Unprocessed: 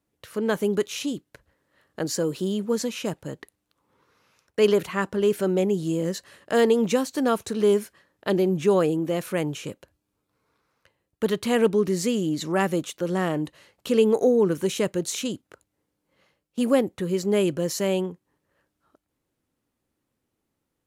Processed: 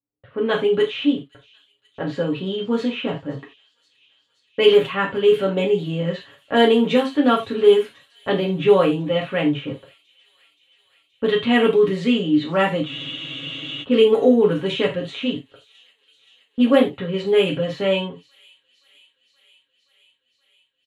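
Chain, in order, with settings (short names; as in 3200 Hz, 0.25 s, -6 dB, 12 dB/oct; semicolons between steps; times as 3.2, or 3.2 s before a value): gate -47 dBFS, range -20 dB; low-pass opened by the level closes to 970 Hz, open at -16 dBFS; resonant high shelf 4300 Hz -9 dB, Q 3; comb 7.3 ms, depth 77%; on a send: thin delay 0.524 s, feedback 74%, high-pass 4300 Hz, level -16.5 dB; on the sum: non-linear reverb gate 0.11 s falling, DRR -0.5 dB; spectral freeze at 12.89, 0.94 s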